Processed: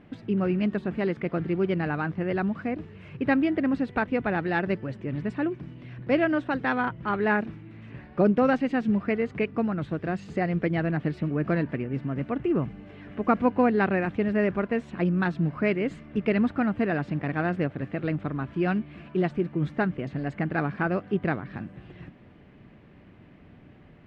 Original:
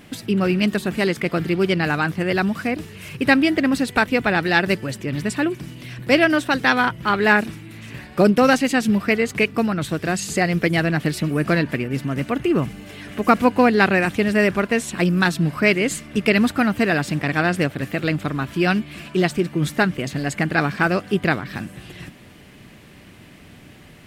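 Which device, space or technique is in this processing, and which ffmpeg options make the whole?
phone in a pocket: -af "lowpass=3000,highshelf=frequency=2000:gain=-12,volume=-5.5dB"

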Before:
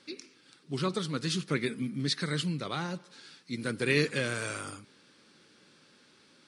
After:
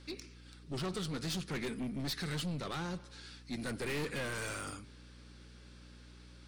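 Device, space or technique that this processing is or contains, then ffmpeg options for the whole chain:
valve amplifier with mains hum: -filter_complex "[0:a]aeval=exprs='(tanh(50.1*val(0)+0.25)-tanh(0.25))/50.1':channel_layout=same,aeval=exprs='val(0)+0.002*(sin(2*PI*60*n/s)+sin(2*PI*2*60*n/s)/2+sin(2*PI*3*60*n/s)/3+sin(2*PI*4*60*n/s)/4+sin(2*PI*5*60*n/s)/5)':channel_layout=same,asettb=1/sr,asplit=3[link_01][link_02][link_03];[link_01]atrim=end=3.814[link_04];[link_02]atrim=start=3.81:end=4.33,asetpts=PTS-STARTPTS,afade=type=in:duration=0.004:curve=qsin,afade=type=out:start_time=0.516:duration=0.004:curve=qsin,equalizer=frequency=6200:width_type=o:width=0.77:gain=-5.5[link_05];[link_03]atrim=start=4.326[link_06];[link_04][link_05]acrossfade=duration=0.004:curve1=hsin:curve2=qsin[link_07];[link_07][link_06]acrossfade=duration=0.004:curve1=qsin:curve2=hsin"

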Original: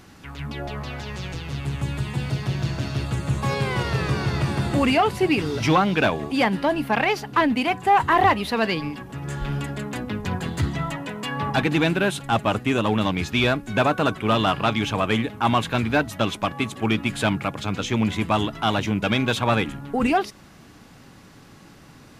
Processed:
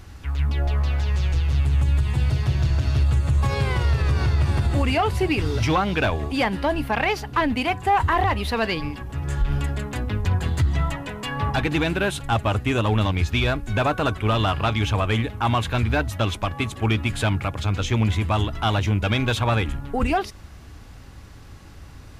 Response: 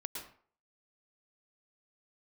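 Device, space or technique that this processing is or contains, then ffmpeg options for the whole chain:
car stereo with a boomy subwoofer: -af "lowshelf=frequency=110:width_type=q:width=1.5:gain=14,alimiter=limit=-12.5dB:level=0:latency=1:release=92"

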